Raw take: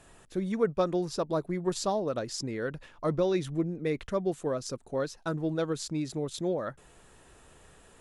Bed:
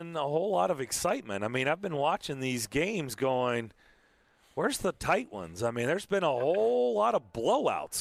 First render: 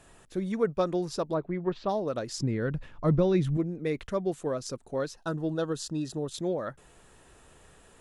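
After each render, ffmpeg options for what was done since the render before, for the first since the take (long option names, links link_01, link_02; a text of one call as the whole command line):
ffmpeg -i in.wav -filter_complex "[0:a]asplit=3[link_01][link_02][link_03];[link_01]afade=type=out:start_time=1.33:duration=0.02[link_04];[link_02]lowpass=frequency=3100:width=0.5412,lowpass=frequency=3100:width=1.3066,afade=type=in:start_time=1.33:duration=0.02,afade=type=out:start_time=1.88:duration=0.02[link_05];[link_03]afade=type=in:start_time=1.88:duration=0.02[link_06];[link_04][link_05][link_06]amix=inputs=3:normalize=0,asettb=1/sr,asplit=3[link_07][link_08][link_09];[link_07]atrim=end=2.384[link_10];[link_08]atrim=start=2.38:end=3.57,asetpts=PTS-STARTPTS,afade=type=in:duration=0.004:curve=qsin,afade=type=out:start_time=1.186:duration=0.004:curve=qsin,bass=frequency=250:gain=11,treble=frequency=4000:gain=-6[link_11];[link_09]atrim=start=3.566[link_12];[link_10][link_11]acrossfade=duration=0.004:curve1=hsin:curve2=qsin[link_13];[link_13][link_12]acrossfade=duration=0.004:curve1=qsin:curve2=hsin,asettb=1/sr,asplit=3[link_14][link_15][link_16];[link_14]atrim=end=5.174[link_17];[link_15]atrim=start=5.17:end=6.32,asetpts=PTS-STARTPTS,afade=type=in:duration=0.004:curve=qsin,afade=type=out:start_time=1.146:duration=0.004:curve=qsin,asuperstop=centerf=2200:order=20:qfactor=4[link_18];[link_16]atrim=start=6.316[link_19];[link_17][link_18]acrossfade=duration=0.004:curve1=hsin:curve2=qsin[link_20];[link_20][link_19]acrossfade=duration=0.004:curve1=qsin:curve2=hsin" out.wav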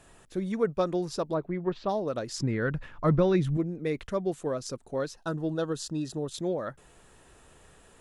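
ffmpeg -i in.wav -filter_complex "[0:a]asettb=1/sr,asplit=3[link_01][link_02][link_03];[link_01]atrim=end=2.364[link_04];[link_02]atrim=start=2.36:end=3.36,asetpts=PTS-STARTPTS,afade=type=in:duration=0.004:curve=qsin,afade=type=out:start_time=0.996:duration=0.004:curve=qsin,equalizer=frequency=1500:width=0.84:gain=6.5[link_05];[link_03]atrim=start=3.356[link_06];[link_04][link_05]acrossfade=duration=0.004:curve1=hsin:curve2=qsin[link_07];[link_07][link_06]acrossfade=duration=0.004:curve1=qsin:curve2=hsin" out.wav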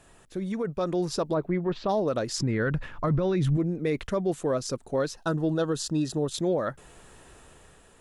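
ffmpeg -i in.wav -af "alimiter=limit=-23.5dB:level=0:latency=1:release=34,dynaudnorm=framelen=170:gausssize=9:maxgain=5.5dB" out.wav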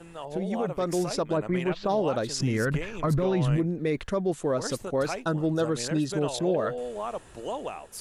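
ffmpeg -i in.wav -i bed.wav -filter_complex "[1:a]volume=-7dB[link_01];[0:a][link_01]amix=inputs=2:normalize=0" out.wav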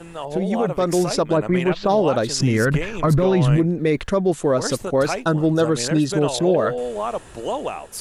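ffmpeg -i in.wav -af "volume=8dB" out.wav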